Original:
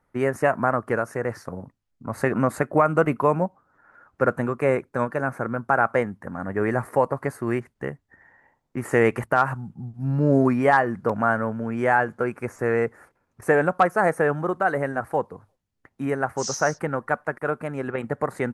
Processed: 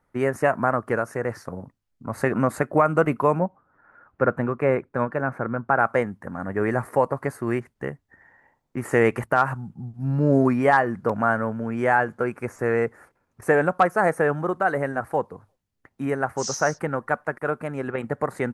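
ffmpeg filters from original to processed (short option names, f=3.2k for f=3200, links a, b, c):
-filter_complex "[0:a]asettb=1/sr,asplit=3[a][b][c];[a]atrim=end=3.394[d];[b]atrim=start=3.39:end=5.79,asetpts=PTS-STARTPTS,afade=t=in:d=0.004:c=qsin,afade=t=out:st=2.396:d=0.004:c=qsin,bass=f=250:g=1,treble=f=4k:g=-14[e];[c]atrim=start=5.786[f];[d][e]acrossfade=d=0.004:c1=hsin:c2=qsin[g];[g][f]acrossfade=d=0.004:c1=qsin:c2=hsin"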